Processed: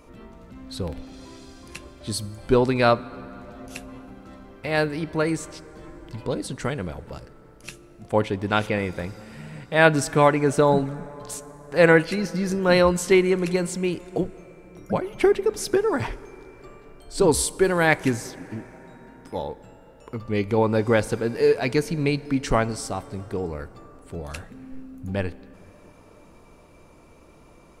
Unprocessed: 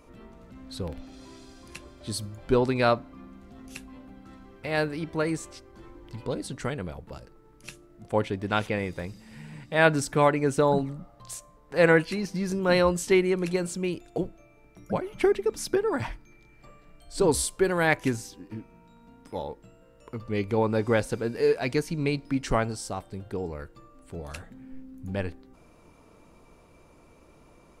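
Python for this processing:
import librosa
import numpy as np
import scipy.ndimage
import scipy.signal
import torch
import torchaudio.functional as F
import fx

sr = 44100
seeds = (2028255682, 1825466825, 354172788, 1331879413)

y = fx.rev_plate(x, sr, seeds[0], rt60_s=5.0, hf_ratio=0.5, predelay_ms=0, drr_db=18.0)
y = F.gain(torch.from_numpy(y), 4.0).numpy()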